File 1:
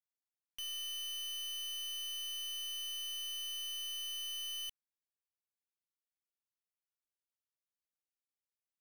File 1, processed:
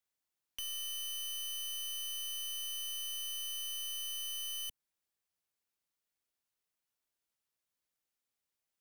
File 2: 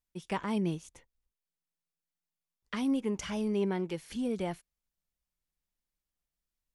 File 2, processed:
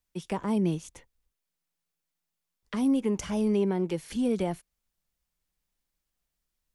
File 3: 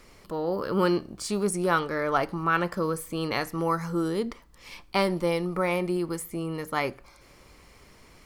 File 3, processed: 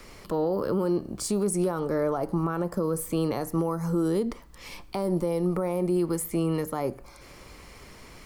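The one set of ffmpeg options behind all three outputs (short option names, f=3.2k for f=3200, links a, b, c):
-filter_complex "[0:a]acrossover=split=180|950|6500[a][b][c][d];[c]acompressor=threshold=-49dB:ratio=6[e];[a][b][e][d]amix=inputs=4:normalize=0,alimiter=limit=-24dB:level=0:latency=1:release=140,volume=6dB"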